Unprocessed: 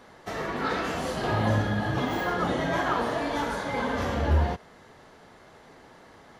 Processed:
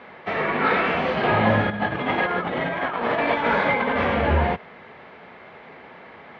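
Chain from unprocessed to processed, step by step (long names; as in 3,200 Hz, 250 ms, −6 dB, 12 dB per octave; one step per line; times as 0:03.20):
0:01.70–0:03.96: compressor whose output falls as the input rises −30 dBFS, ratio −0.5
loudspeaker in its box 110–3,200 Hz, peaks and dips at 120 Hz −8 dB, 300 Hz −6 dB, 2,300 Hz +8 dB
level +8 dB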